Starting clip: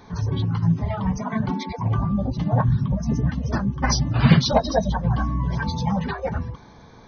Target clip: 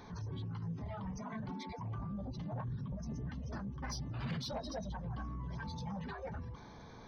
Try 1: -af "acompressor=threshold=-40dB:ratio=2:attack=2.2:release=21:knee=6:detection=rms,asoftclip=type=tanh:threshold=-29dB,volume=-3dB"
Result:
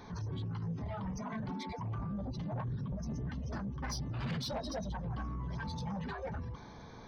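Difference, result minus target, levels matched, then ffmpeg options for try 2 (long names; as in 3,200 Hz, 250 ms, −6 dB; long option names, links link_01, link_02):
downward compressor: peak gain reduction −4 dB
-af "acompressor=threshold=-48dB:ratio=2:attack=2.2:release=21:knee=6:detection=rms,asoftclip=type=tanh:threshold=-29dB,volume=-3dB"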